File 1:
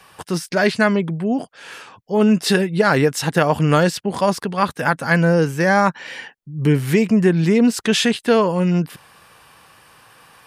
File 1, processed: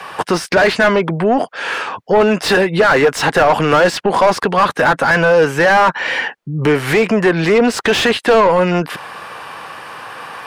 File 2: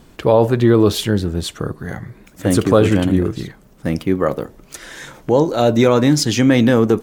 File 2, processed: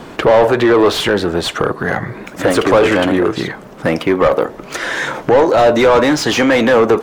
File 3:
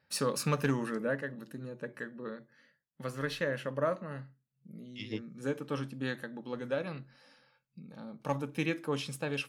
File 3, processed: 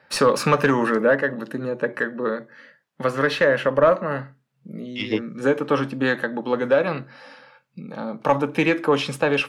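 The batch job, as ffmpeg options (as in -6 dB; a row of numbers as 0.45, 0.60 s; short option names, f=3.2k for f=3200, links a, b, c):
-filter_complex "[0:a]acrossover=split=440|3000[a][b][c];[a]acompressor=threshold=-29dB:ratio=3[d];[d][b][c]amix=inputs=3:normalize=0,asplit=2[e][f];[f]highpass=f=720:p=1,volume=25dB,asoftclip=type=tanh:threshold=-2dB[g];[e][g]amix=inputs=2:normalize=0,lowpass=f=1.1k:p=1,volume=-6dB,asplit=2[h][i];[i]acompressor=threshold=-23dB:ratio=6,volume=-2.5dB[j];[h][j]amix=inputs=2:normalize=0"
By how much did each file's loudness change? +4.0, +2.0, +14.0 LU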